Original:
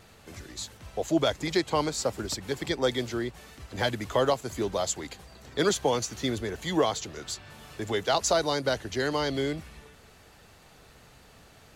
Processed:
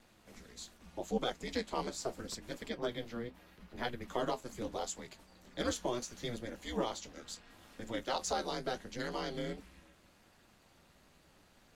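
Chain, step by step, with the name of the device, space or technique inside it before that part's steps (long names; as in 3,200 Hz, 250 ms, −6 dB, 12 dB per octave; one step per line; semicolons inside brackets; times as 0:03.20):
0:02.68–0:04.08: parametric band 7,400 Hz −9.5 dB 1.2 octaves
alien voice (ring modulation 120 Hz; flanger 0.77 Hz, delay 7.7 ms, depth 7 ms, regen −55%)
level −3.5 dB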